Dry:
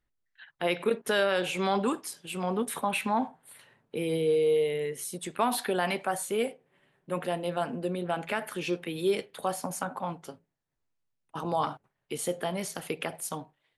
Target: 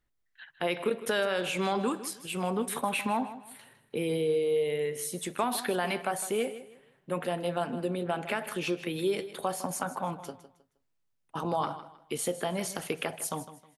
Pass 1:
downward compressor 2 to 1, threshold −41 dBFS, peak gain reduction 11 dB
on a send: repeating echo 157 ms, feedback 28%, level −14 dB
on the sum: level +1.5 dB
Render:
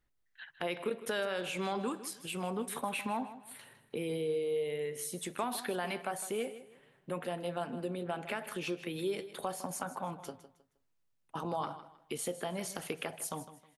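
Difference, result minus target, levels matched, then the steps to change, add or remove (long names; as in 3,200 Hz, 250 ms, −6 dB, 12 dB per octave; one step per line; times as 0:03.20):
downward compressor: peak gain reduction +6 dB
change: downward compressor 2 to 1, threshold −29 dBFS, peak gain reduction 5 dB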